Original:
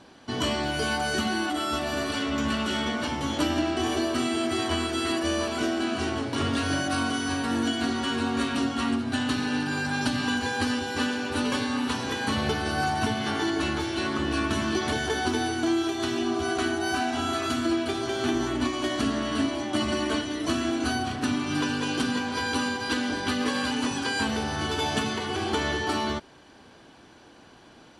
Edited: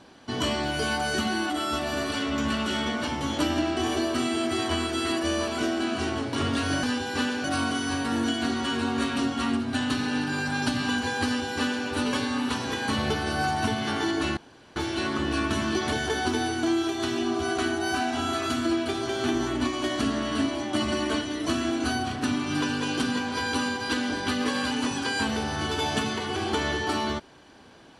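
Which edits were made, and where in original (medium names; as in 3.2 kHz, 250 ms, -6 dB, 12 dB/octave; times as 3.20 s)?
10.64–11.25 s: copy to 6.83 s
13.76 s: insert room tone 0.39 s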